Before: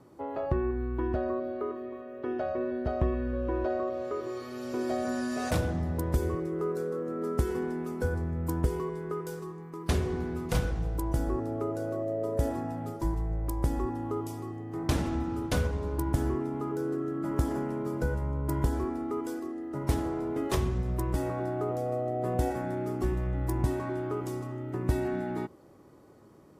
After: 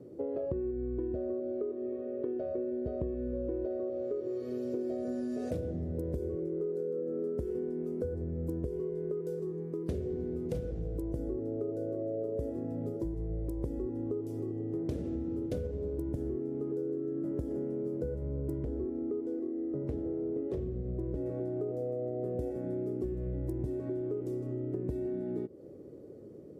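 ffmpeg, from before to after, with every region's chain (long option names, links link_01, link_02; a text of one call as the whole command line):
ffmpeg -i in.wav -filter_complex "[0:a]asettb=1/sr,asplit=3[link_01][link_02][link_03];[link_01]atrim=end=18.584[link_04];[link_02]atrim=start=18.58:end=21.26,asetpts=PTS-STARTPTS,afade=type=in:duration=0.004:curve=qsin,afade=type=out:start_time=2.676:duration=0.004:curve=qsin,lowpass=frequency=1700:poles=1,aeval=exprs='0.0944*(abs(mod(val(0)/0.0944+3,4)-2)-1)':channel_layout=same[link_05];[link_03]atrim=start=21.256[link_06];[link_04][link_05]acrossfade=duration=0.004:curve1=hsin:curve2=qsin[link_07];[link_07][link_06]acrossfade=duration=0.004:curve1=qsin:curve2=hsin,highpass=50,lowshelf=frequency=680:width_type=q:width=3:gain=12,acompressor=threshold=-24dB:ratio=6,volume=-8.5dB" out.wav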